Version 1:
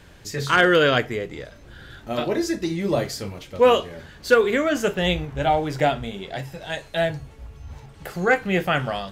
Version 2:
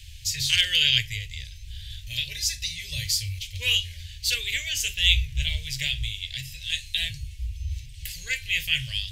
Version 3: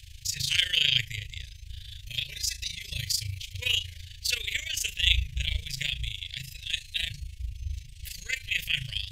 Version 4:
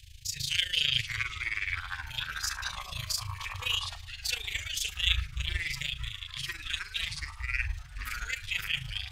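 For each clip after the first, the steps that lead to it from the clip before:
inverse Chebyshev band-stop 180–1400 Hz, stop band 40 dB; trim +8.5 dB
AM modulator 27 Hz, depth 65%
ever faster or slower copies 371 ms, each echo -6 st, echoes 3, each echo -6 dB; short-mantissa float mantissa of 6-bit; trim -4 dB

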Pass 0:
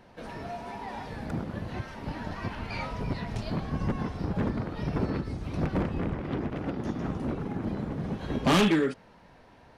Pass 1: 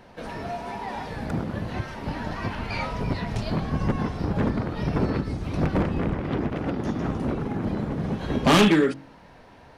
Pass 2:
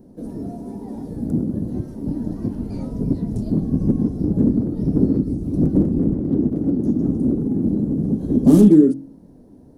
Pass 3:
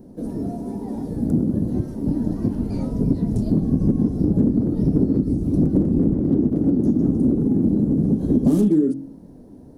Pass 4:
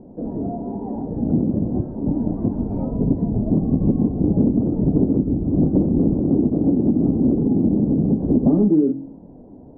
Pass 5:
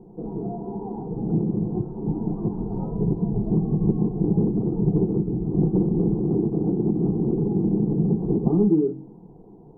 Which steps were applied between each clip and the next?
de-hum 45.41 Hz, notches 8; trim +5.5 dB
FFT filter 110 Hz 0 dB, 280 Hz +10 dB, 980 Hz -19 dB, 2.5 kHz -30 dB, 10 kHz 0 dB; trim +2 dB
compression 12:1, threshold -16 dBFS, peak gain reduction 10.5 dB; trim +3 dB
resonant low-pass 800 Hz, resonance Q 1.9
static phaser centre 390 Hz, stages 8

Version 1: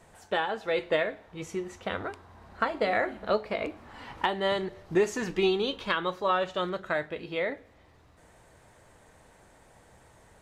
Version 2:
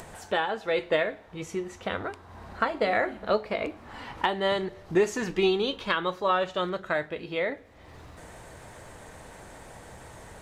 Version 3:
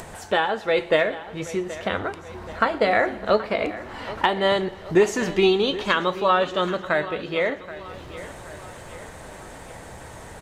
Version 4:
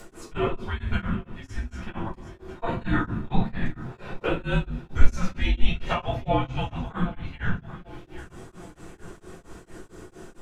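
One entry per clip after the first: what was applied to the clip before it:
upward compressor, threshold -37 dBFS; trim +1.5 dB
feedback delay 777 ms, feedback 52%, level -16 dB; modulated delay 120 ms, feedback 65%, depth 73 cents, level -22.5 dB; trim +5.5 dB
frequency shift -430 Hz; simulated room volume 210 m³, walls furnished, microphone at 4.6 m; tremolo of two beating tones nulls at 4.4 Hz; trim -12.5 dB

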